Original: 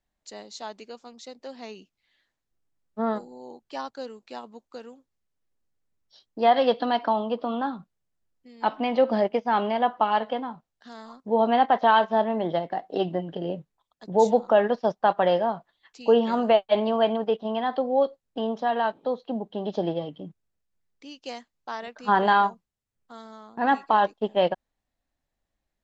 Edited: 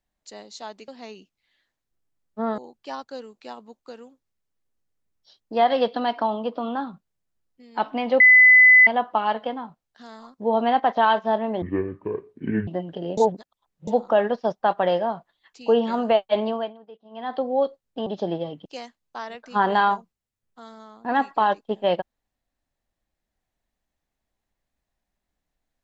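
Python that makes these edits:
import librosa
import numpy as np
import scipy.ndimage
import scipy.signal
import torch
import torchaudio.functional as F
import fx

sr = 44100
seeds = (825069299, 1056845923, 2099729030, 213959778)

y = fx.edit(x, sr, fx.cut(start_s=0.88, length_s=0.6),
    fx.cut(start_s=3.18, length_s=0.26),
    fx.bleep(start_s=9.06, length_s=0.67, hz=2010.0, db=-8.5),
    fx.speed_span(start_s=12.48, length_s=0.59, speed=0.56),
    fx.reverse_span(start_s=13.57, length_s=0.7),
    fx.fade_down_up(start_s=16.86, length_s=0.91, db=-20.5, fade_s=0.27),
    fx.cut(start_s=18.46, length_s=1.16),
    fx.cut(start_s=20.21, length_s=0.97), tone=tone)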